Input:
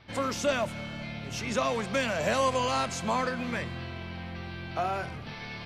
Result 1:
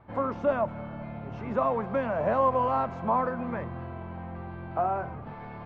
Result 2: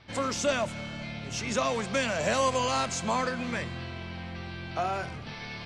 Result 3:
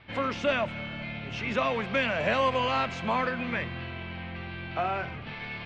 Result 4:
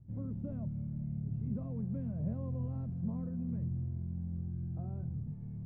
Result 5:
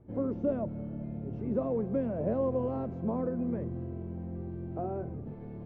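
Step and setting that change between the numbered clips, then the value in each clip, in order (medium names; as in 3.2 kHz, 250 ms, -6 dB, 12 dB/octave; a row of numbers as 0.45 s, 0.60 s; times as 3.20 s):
resonant low-pass, frequency: 1 kHz, 7.9 kHz, 2.7 kHz, 150 Hz, 390 Hz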